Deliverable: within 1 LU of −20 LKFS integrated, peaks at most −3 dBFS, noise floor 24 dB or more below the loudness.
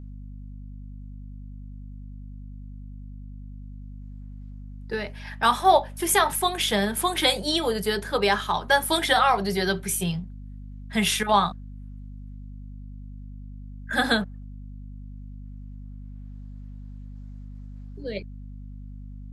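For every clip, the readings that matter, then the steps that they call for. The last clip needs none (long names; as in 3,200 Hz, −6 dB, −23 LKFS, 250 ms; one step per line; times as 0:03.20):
mains hum 50 Hz; hum harmonics up to 250 Hz; level of the hum −37 dBFS; integrated loudness −23.5 LKFS; sample peak −6.0 dBFS; target loudness −20.0 LKFS
→ hum removal 50 Hz, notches 5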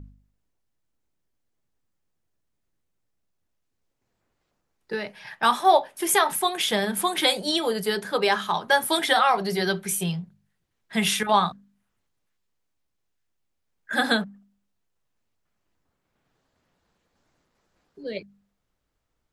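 mains hum none found; integrated loudness −23.0 LKFS; sample peak −6.5 dBFS; target loudness −20.0 LKFS
→ level +3 dB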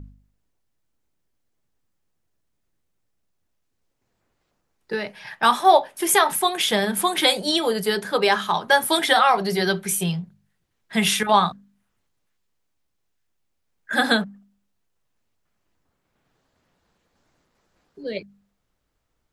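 integrated loudness −20.5 LKFS; sample peak −3.5 dBFS; background noise floor −74 dBFS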